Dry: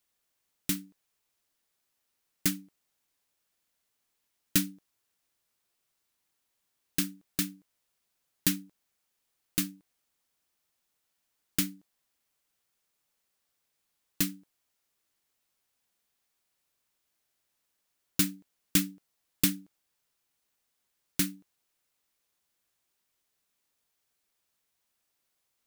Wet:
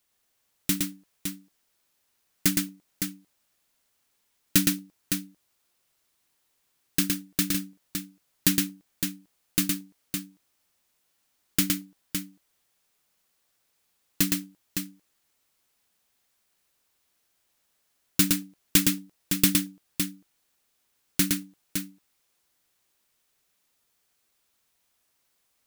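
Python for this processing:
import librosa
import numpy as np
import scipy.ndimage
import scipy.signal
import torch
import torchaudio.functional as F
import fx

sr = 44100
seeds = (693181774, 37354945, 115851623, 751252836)

y = fx.echo_multitap(x, sr, ms=(114, 561), db=(-3.5, -7.0))
y = y * 10.0 ** (4.5 / 20.0)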